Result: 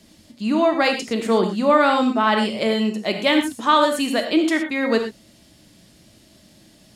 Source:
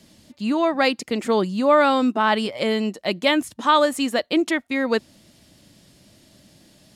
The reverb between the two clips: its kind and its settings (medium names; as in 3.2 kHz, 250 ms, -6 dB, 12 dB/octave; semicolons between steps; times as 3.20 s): gated-style reverb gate 140 ms flat, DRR 4 dB